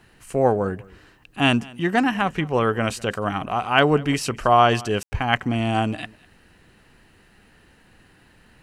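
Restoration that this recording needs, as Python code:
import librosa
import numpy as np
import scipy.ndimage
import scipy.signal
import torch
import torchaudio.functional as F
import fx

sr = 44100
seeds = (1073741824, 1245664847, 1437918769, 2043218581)

y = fx.fix_ambience(x, sr, seeds[0], print_start_s=7.03, print_end_s=7.53, start_s=5.03, end_s=5.12)
y = fx.fix_echo_inverse(y, sr, delay_ms=201, level_db=-23.0)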